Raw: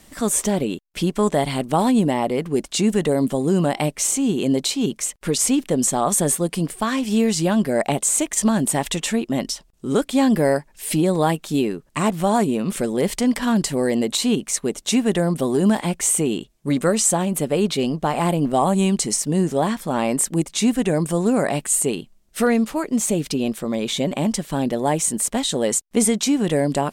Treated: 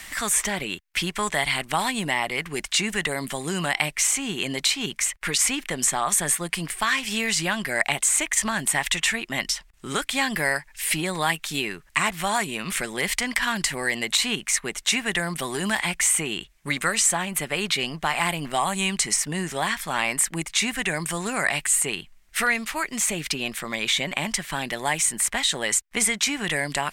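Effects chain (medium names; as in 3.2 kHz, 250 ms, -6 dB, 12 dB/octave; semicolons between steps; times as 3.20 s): ten-band graphic EQ 125 Hz -7 dB, 250 Hz -12 dB, 500 Hz -11 dB, 2 kHz +10 dB; three bands compressed up and down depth 40%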